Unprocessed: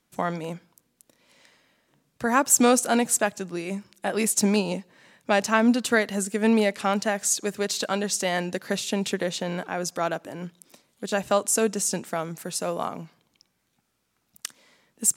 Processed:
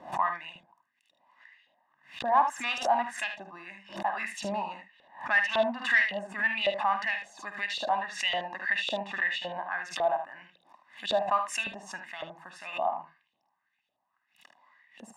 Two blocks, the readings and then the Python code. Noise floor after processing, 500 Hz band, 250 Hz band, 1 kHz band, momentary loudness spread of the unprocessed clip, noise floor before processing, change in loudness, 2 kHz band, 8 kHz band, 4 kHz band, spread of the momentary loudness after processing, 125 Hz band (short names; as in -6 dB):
-79 dBFS, -7.5 dB, -18.5 dB, 0.0 dB, 15 LU, -73 dBFS, -4.5 dB, +1.5 dB, -21.5 dB, -2.0 dB, 17 LU, -17.5 dB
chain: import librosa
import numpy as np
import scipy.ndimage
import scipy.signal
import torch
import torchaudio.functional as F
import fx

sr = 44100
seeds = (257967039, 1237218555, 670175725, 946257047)

p1 = fx.bass_treble(x, sr, bass_db=-1, treble_db=-8)
p2 = p1 + 0.91 * np.pad(p1, (int(1.1 * sr / 1000.0), 0))[:len(p1)]
p3 = fx.dynamic_eq(p2, sr, hz=2200.0, q=1.2, threshold_db=-37.0, ratio=4.0, max_db=4)
p4 = 10.0 ** (-13.5 / 20.0) * np.tanh(p3 / 10.0 ** (-13.5 / 20.0))
p5 = fx.filter_lfo_bandpass(p4, sr, shape='saw_up', hz=1.8, low_hz=520.0, high_hz=3500.0, q=4.4)
p6 = p5 + fx.room_early_taps(p5, sr, ms=(50, 76), db=(-10.5, -9.0), dry=0)
p7 = fx.pre_swell(p6, sr, db_per_s=150.0)
y = F.gain(torch.from_numpy(p7), 4.0).numpy()